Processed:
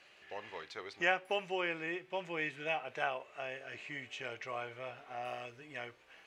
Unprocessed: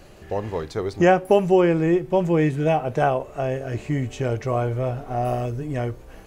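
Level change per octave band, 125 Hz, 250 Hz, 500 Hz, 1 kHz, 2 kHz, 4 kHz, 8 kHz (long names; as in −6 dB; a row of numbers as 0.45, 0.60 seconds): −31.0 dB, −24.5 dB, −20.0 dB, −15.0 dB, −5.0 dB, −4.0 dB, can't be measured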